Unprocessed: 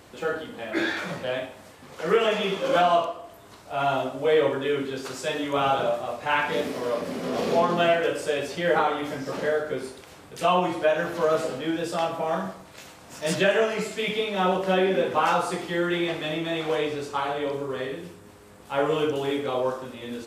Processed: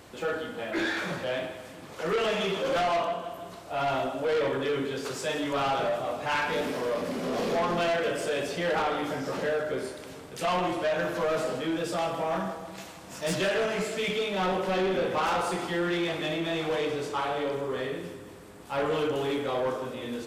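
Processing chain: two-band feedback delay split 340 Hz, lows 337 ms, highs 157 ms, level -13.5 dB; saturation -23 dBFS, distortion -10 dB

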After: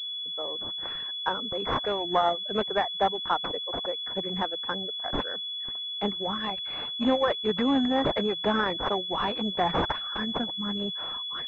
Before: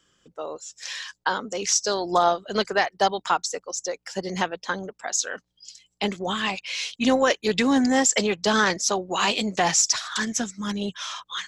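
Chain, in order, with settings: block-companded coder 5-bit; reverb removal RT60 0.51 s; class-D stage that switches slowly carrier 3.4 kHz; trim -3 dB

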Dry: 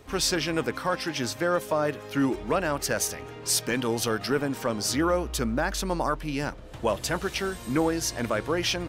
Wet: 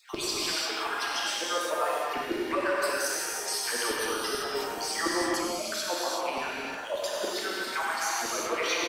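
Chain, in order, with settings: random holes in the spectrogram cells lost 34%; peak limiter -23.5 dBFS, peak gain reduction 9 dB; crackle 83 per s -46 dBFS; LFO high-pass saw down 6.9 Hz 350–4700 Hz; on a send: delay 98 ms -10.5 dB; on the sum: gated-style reverb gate 410 ms flat, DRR -5.5 dB; trim -2.5 dB

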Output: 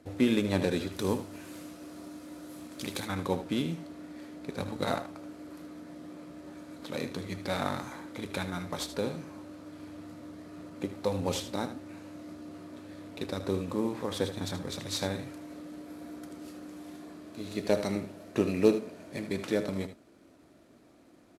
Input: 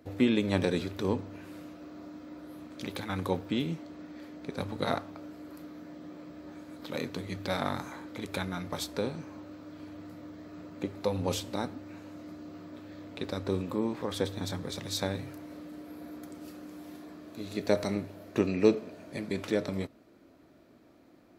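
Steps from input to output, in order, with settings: CVSD coder 64 kbps; 0.92–3.06 s: treble shelf 4.7 kHz +10.5 dB; delay 77 ms -11.5 dB

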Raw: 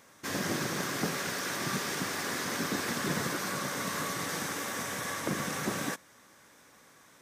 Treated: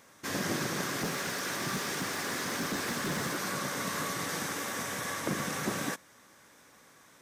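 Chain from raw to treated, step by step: 1.01–3.37 s: hard clipper -28 dBFS, distortion -18 dB

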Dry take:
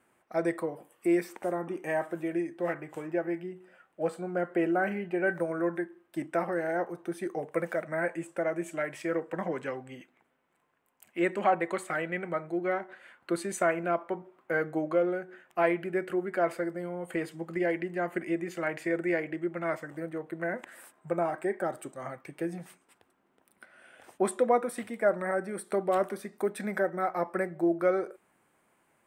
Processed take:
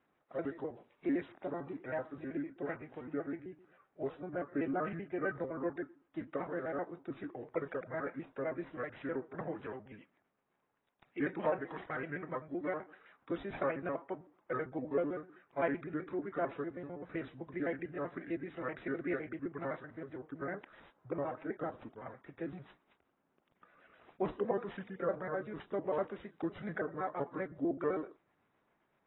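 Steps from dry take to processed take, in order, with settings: pitch shift switched off and on -3.5 st, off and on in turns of 64 ms; sample-and-hold 6×; trim -7.5 dB; AAC 16 kbps 22.05 kHz

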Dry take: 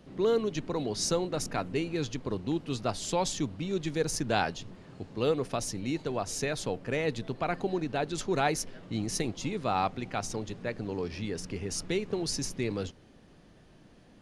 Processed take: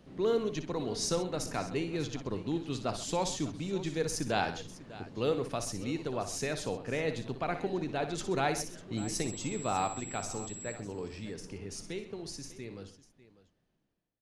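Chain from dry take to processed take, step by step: fade out at the end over 4.63 s; 8.97–10.73 s: whistle 7.7 kHz -44 dBFS; multi-tap echo 60/130/597 ms -10/-16/-17 dB; trim -3 dB

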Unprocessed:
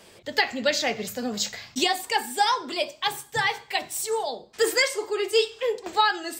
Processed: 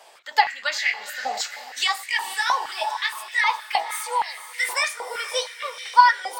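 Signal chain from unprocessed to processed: pitch bend over the whole clip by +2.5 st starting unshifted; echo that smears into a reverb 484 ms, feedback 42%, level -10.5 dB; step-sequenced high-pass 6.4 Hz 760–2000 Hz; trim -1 dB

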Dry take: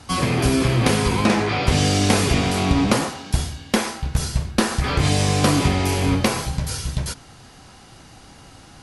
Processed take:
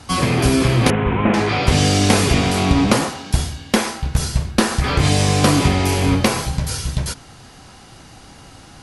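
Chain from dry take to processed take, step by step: 0.90–1.34 s: CVSD coder 16 kbps; trim +3 dB

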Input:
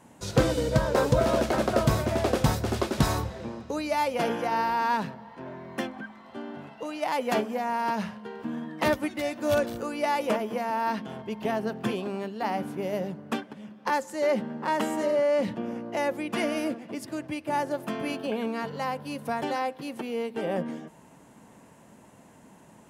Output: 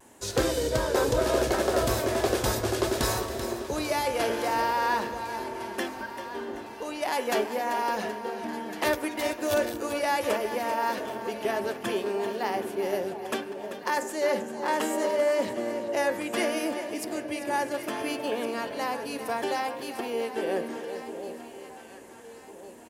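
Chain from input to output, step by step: feedback delay 390 ms, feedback 46%, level -11.5 dB; in parallel at -3 dB: peak limiter -17.5 dBFS, peak gain reduction 7.5 dB; on the sum: treble shelf 4.6 kHz +8 dB; de-hum 74.05 Hz, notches 38; small resonant body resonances 380/1700 Hz, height 8 dB, ringing for 40 ms; on a send: echo whose repeats swap between lows and highs 704 ms, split 860 Hz, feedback 61%, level -9 dB; on the sum: vibrato 0.67 Hz 28 cents; peaking EQ 160 Hz -13 dB 0.84 oct; trim -5 dB

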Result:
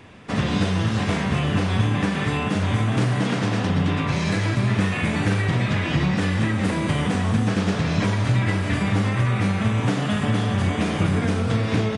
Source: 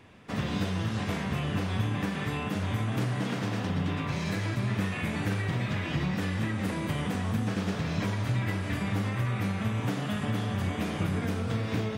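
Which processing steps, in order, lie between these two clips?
resampled via 22.05 kHz; trim +8.5 dB

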